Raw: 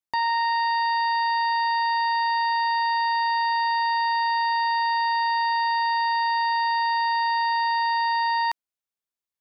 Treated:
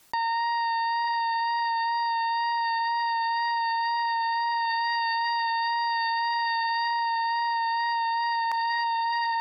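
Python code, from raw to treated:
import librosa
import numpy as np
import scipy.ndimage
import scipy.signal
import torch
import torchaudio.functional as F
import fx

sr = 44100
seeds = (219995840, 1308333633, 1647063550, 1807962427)

y = fx.dereverb_blind(x, sr, rt60_s=0.86)
y = fx.dynamic_eq(y, sr, hz=740.0, q=1.1, threshold_db=-40.0, ratio=4.0, max_db=-5, at=(4.65, 6.91))
y = fx.comb_fb(y, sr, f0_hz=910.0, decay_s=0.27, harmonics='all', damping=0.0, mix_pct=50)
y = fx.wow_flutter(y, sr, seeds[0], rate_hz=2.1, depth_cents=18.0)
y = fx.echo_feedback(y, sr, ms=905, feedback_pct=44, wet_db=-13)
y = fx.env_flatten(y, sr, amount_pct=100)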